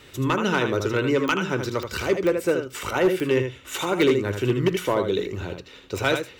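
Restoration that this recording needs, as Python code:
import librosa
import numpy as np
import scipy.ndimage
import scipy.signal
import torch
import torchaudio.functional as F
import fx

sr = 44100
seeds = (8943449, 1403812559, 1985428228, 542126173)

y = fx.fix_declip(x, sr, threshold_db=-13.0)
y = fx.fix_declick_ar(y, sr, threshold=10.0)
y = fx.fix_echo_inverse(y, sr, delay_ms=78, level_db=-7.0)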